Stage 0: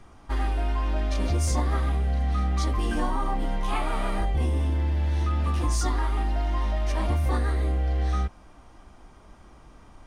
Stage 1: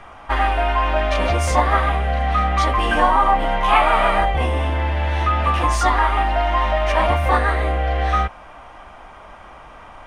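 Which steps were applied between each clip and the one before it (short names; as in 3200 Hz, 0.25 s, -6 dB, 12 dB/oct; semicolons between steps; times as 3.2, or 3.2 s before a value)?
band shelf 1300 Hz +13 dB 3 oct; gain +3 dB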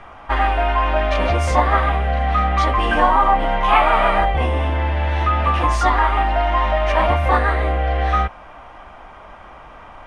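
high shelf 6900 Hz -11.5 dB; gain +1 dB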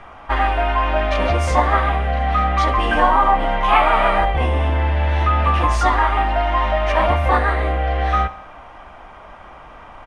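feedback echo 68 ms, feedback 56%, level -18 dB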